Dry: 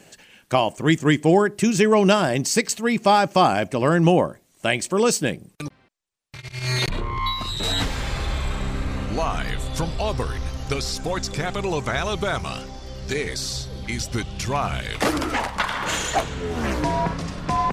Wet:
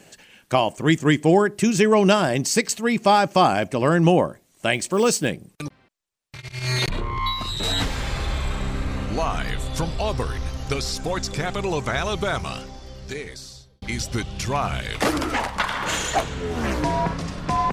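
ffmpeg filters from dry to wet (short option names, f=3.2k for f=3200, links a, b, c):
-filter_complex "[0:a]asettb=1/sr,asplit=3[a][b][c];[a]atrim=end=4.734[d];[b]atrim=start=4.73:end=5.28,asetpts=PTS-STARTPTS,afade=t=in:d=0.004:c=qsin,afade=t=out:st=0.546:d=0.004:c=qsin,acrusher=bits=8:mode=log:mix=0:aa=0.000001[e];[c]atrim=start=5.276[f];[d][e]acrossfade=d=0.004:c1=hsin:c2=qsin[g];[g][f]acrossfade=d=0.004:c1=qsin:c2=hsin,asplit=2[h][i];[h]atrim=end=13.82,asetpts=PTS-STARTPTS,afade=t=out:st=12.42:d=1.4[j];[i]atrim=start=13.82,asetpts=PTS-STARTPTS,afade=t=in:d=0.004:c=hsin[k];[j][k]concat=n=2:v=0:a=1"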